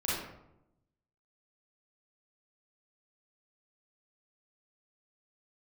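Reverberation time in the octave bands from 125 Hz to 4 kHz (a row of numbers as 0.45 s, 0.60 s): 1.2 s, 1.1 s, 0.90 s, 0.80 s, 0.60 s, 0.45 s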